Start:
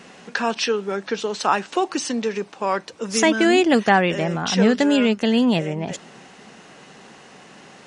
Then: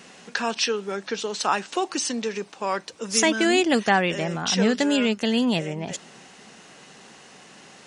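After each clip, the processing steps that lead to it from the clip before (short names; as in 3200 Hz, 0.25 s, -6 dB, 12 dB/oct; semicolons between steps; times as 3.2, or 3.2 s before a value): high shelf 3200 Hz +8 dB; gain -4.5 dB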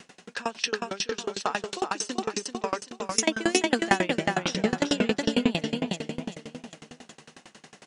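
on a send: feedback echo 0.385 s, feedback 42%, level -3.5 dB; on the sum: dB-ramp tremolo decaying 11 Hz, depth 27 dB; gain +2 dB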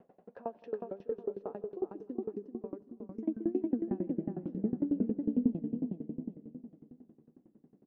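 resonator 100 Hz, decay 1.9 s, mix 40%; feedback echo 0.164 s, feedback 55%, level -23.5 dB; low-pass sweep 620 Hz -> 300 Hz, 0.33–2.96; gain -6 dB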